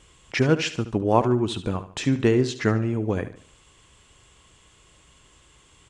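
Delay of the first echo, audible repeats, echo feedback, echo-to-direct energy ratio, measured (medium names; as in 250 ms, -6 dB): 73 ms, 3, 39%, -12.5 dB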